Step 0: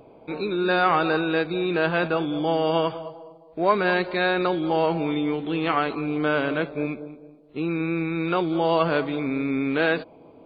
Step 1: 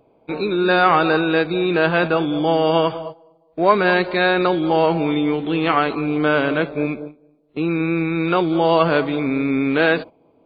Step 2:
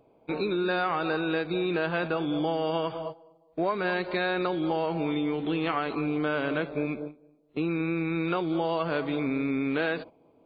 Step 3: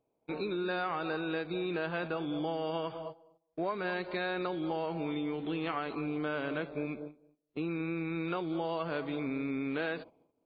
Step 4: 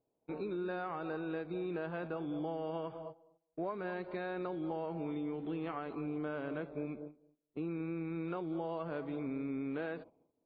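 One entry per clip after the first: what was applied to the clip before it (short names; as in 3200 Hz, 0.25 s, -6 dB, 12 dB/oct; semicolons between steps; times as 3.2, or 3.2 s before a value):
gate -36 dBFS, range -13 dB; gain +5.5 dB
compressor, threshold -20 dBFS, peak gain reduction 11 dB; gain -4.5 dB
gate -58 dBFS, range -12 dB; gain -6.5 dB
LPF 1000 Hz 6 dB/oct; gain -3 dB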